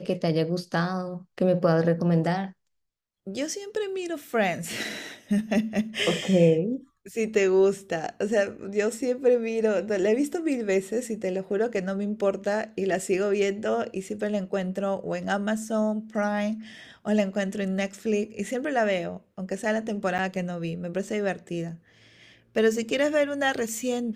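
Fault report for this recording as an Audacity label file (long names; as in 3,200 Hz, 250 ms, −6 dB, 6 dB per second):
20.180000	20.190000	drop-out 7.5 ms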